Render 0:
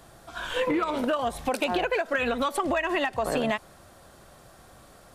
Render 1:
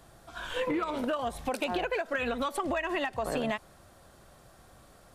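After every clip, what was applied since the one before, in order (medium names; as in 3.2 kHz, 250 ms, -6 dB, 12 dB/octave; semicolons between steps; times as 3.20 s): bass shelf 130 Hz +3.5 dB; trim -5 dB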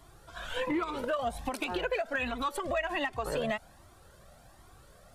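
Shepard-style flanger rising 1.3 Hz; trim +3.5 dB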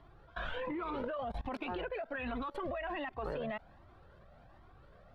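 level held to a coarse grid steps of 21 dB; distance through air 350 m; trim +5.5 dB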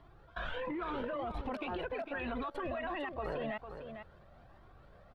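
delay 452 ms -8.5 dB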